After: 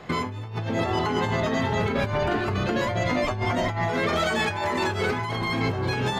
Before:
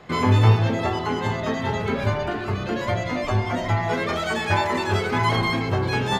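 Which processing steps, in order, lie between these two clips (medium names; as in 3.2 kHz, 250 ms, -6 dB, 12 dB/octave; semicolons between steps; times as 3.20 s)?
compressor with a negative ratio -26 dBFS, ratio -1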